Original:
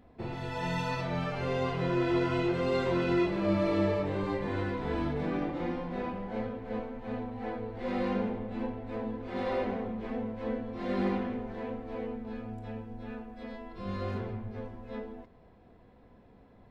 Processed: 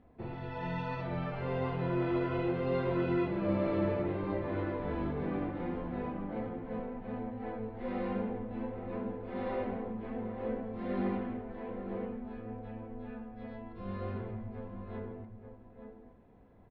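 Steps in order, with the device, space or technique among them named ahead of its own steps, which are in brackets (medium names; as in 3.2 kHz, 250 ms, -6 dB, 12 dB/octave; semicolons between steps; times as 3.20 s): shout across a valley (distance through air 310 m; echo from a far wall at 150 m, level -7 dB); trim -3 dB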